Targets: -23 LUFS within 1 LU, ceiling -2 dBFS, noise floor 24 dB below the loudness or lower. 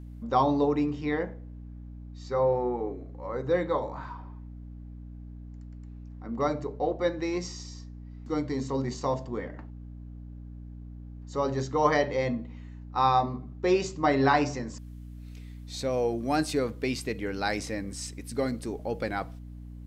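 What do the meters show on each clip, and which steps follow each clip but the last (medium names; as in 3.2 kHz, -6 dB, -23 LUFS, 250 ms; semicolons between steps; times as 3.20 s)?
hum 60 Hz; highest harmonic 300 Hz; hum level -40 dBFS; loudness -29.0 LUFS; peak level -10.0 dBFS; loudness target -23.0 LUFS
-> hum notches 60/120/180/240/300 Hz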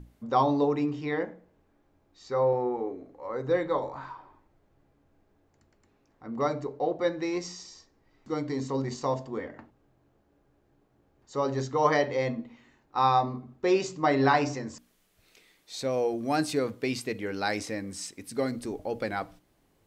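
hum not found; loudness -29.0 LUFS; peak level -10.0 dBFS; loudness target -23.0 LUFS
-> trim +6 dB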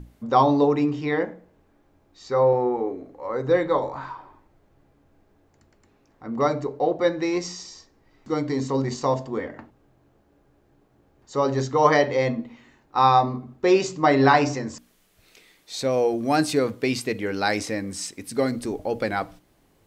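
loudness -23.0 LUFS; peak level -4.0 dBFS; noise floor -62 dBFS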